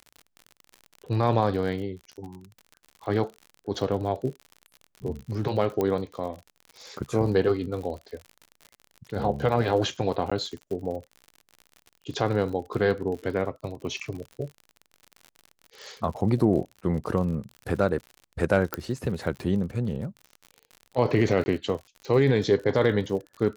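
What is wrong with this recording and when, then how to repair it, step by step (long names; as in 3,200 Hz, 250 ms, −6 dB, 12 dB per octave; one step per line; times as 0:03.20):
surface crackle 57 per second −35 dBFS
0:05.81: click −14 dBFS
0:10.30–0:10.31: drop-out 15 ms
0:18.74: click −11 dBFS
0:21.44–0:21.46: drop-out 20 ms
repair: click removal
repair the gap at 0:10.30, 15 ms
repair the gap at 0:21.44, 20 ms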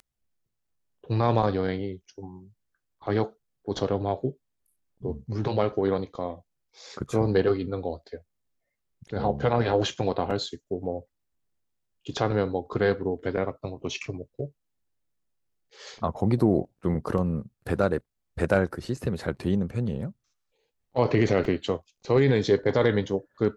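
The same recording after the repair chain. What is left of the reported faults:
none of them is left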